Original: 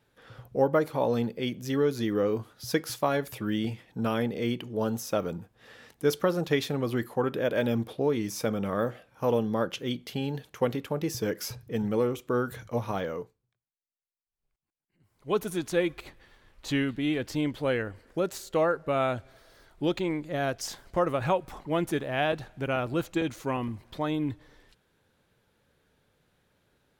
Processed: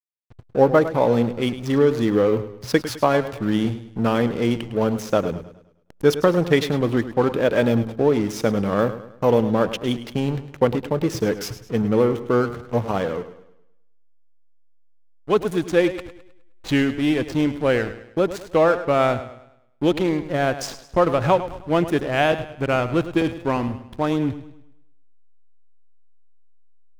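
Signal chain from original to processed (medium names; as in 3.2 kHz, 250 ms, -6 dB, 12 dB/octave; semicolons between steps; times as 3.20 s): treble shelf 9.1 kHz -5 dB; hysteresis with a dead band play -34.5 dBFS; modulated delay 104 ms, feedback 41%, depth 63 cents, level -13 dB; trim +8.5 dB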